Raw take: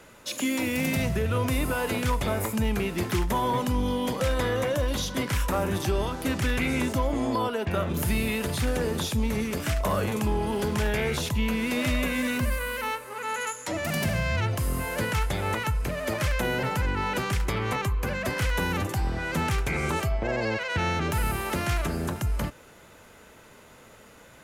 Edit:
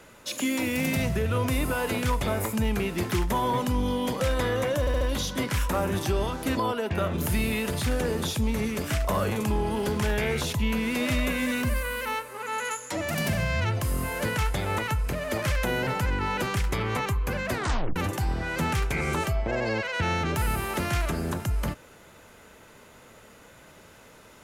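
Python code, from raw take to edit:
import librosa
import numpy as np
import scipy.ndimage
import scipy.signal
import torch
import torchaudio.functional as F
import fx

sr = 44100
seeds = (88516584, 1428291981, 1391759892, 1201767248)

y = fx.edit(x, sr, fx.stutter(start_s=4.8, slice_s=0.07, count=4),
    fx.cut(start_s=6.36, length_s=0.97),
    fx.tape_stop(start_s=18.28, length_s=0.44), tone=tone)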